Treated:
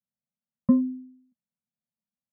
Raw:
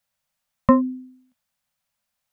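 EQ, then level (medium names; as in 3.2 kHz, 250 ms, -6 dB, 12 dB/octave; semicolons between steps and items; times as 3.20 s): band-pass filter 210 Hz, Q 2.4; distance through air 260 m; 0.0 dB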